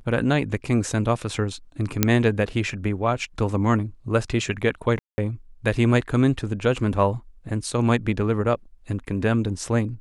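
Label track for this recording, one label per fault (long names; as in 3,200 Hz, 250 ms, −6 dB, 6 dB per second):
2.030000	2.030000	click −1 dBFS
4.990000	5.180000	drop-out 190 ms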